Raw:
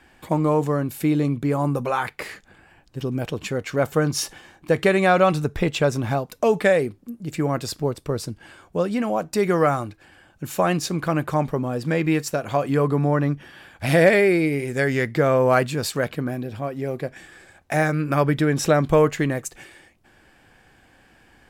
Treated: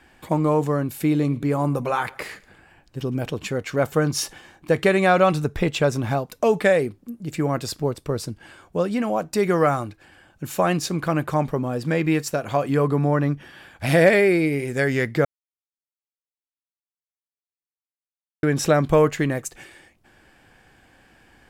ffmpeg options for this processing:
ffmpeg -i in.wav -filter_complex "[0:a]asettb=1/sr,asplit=3[link_01][link_02][link_03];[link_01]atrim=end=1.004[link_04];[link_02]atrim=start=1:end=3.28,asetpts=PTS-STARTPTS,afade=type=in:duration=0.004:curve=qsin,afade=type=out:start_time=2.276:duration=0.004:curve=qsin,aecho=1:1:111|222|333:0.0708|0.0333|0.0156,atrim=end_sample=100548[link_05];[link_03]atrim=start=3.276[link_06];[link_04][link_05]acrossfade=duration=0.004:curve1=hsin:curve2=qsin[link_07];[link_07][link_06]acrossfade=duration=0.004:curve1=qsin:curve2=hsin,asplit=3[link_08][link_09][link_10];[link_08]atrim=end=15.25,asetpts=PTS-STARTPTS,afade=type=out:start_time=15.246:duration=0.004:curve=hsin[link_11];[link_09]atrim=start=15.25:end=18.43,asetpts=PTS-STARTPTS,volume=0[link_12];[link_10]atrim=start=18.43,asetpts=PTS-STARTPTS,afade=type=in:duration=0.004:curve=hsin[link_13];[link_11][link_12][link_13]concat=n=3:v=0:a=1" out.wav

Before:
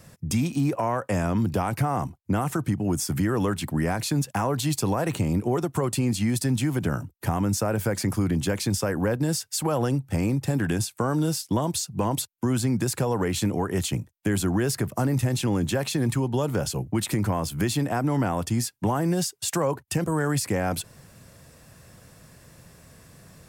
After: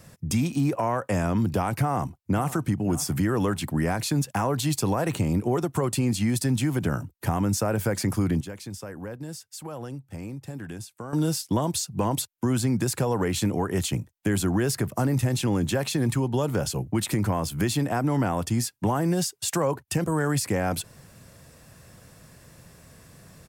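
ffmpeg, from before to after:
ffmpeg -i in.wav -filter_complex "[0:a]asplit=2[link_01][link_02];[link_02]afade=type=in:start_time=1.79:duration=0.01,afade=type=out:start_time=2.53:duration=0.01,aecho=0:1:560|1120:0.158489|0.0316979[link_03];[link_01][link_03]amix=inputs=2:normalize=0,asplit=3[link_04][link_05][link_06];[link_04]atrim=end=8.412[link_07];[link_05]atrim=start=8.408:end=11.132,asetpts=PTS-STARTPTS,volume=-12dB[link_08];[link_06]atrim=start=11.128[link_09];[link_07][link_08]acrossfade=duration=0.004:curve1=hsin:curve2=hsin[link_10];[link_10][link_09]acrossfade=duration=0.004:curve1=hsin:curve2=hsin" out.wav

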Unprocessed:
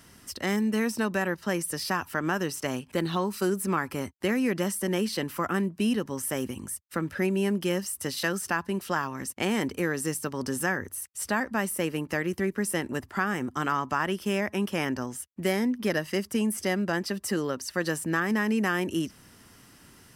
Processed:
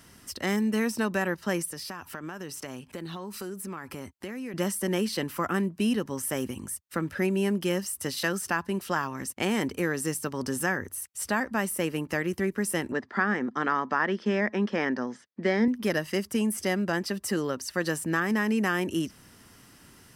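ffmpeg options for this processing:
ffmpeg -i in.wav -filter_complex "[0:a]asettb=1/sr,asplit=3[link_01][link_02][link_03];[link_01]atrim=end=1.654[link_04];[link_02]atrim=start=1.65:end=4.54,asetpts=PTS-STARTPTS,afade=type=in:duration=0.004:curve=qsin,afade=type=out:start_time=2.886:duration=0.004:curve=qsin,acompressor=threshold=-35dB:ratio=4:attack=3.2:release=140:knee=1:detection=peak[link_05];[link_03]atrim=start=4.536[link_06];[link_04][link_05]acrossfade=duration=0.004:curve1=hsin:curve2=qsin[link_07];[link_07][link_06]acrossfade=duration=0.004:curve1=qsin:curve2=hsin,asettb=1/sr,asplit=3[link_08][link_09][link_10];[link_08]atrim=end=12.924[link_11];[link_09]atrim=start=12.92:end=15.68,asetpts=PTS-STARTPTS,afade=type=in:duration=0.004:curve=qsin,afade=type=out:start_time=2.756:duration=0.004:curve=qsin,highpass=220,equalizer=frequency=220:width_type=q:width=4:gain=8,equalizer=frequency=470:width_type=q:width=4:gain=5,equalizer=frequency=1800:width_type=q:width=4:gain=6,equalizer=frequency=2800:width_type=q:width=4:gain=-7,lowpass=frequency=5000:width=0.5412,lowpass=frequency=5000:width=1.3066[link_12];[link_10]atrim=start=15.676[link_13];[link_11][link_12]acrossfade=duration=0.004:curve1=hsin:curve2=qsin[link_14];[link_14][link_13]acrossfade=duration=0.004:curve1=qsin:curve2=hsin" out.wav

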